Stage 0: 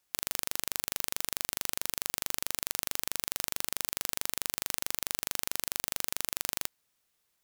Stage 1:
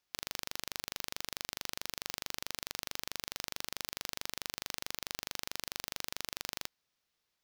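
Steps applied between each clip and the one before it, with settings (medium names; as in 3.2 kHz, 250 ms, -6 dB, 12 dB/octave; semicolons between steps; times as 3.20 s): resonant high shelf 6.6 kHz -6.5 dB, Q 1.5; trim -4 dB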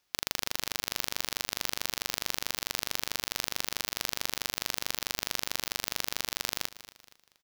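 feedback delay 235 ms, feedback 37%, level -15.5 dB; trim +7.5 dB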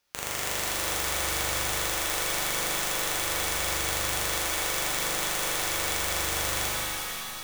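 one-sided wavefolder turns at -29.5 dBFS; pitch-shifted reverb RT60 2.8 s, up +7 st, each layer -2 dB, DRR -6 dB; trim -1.5 dB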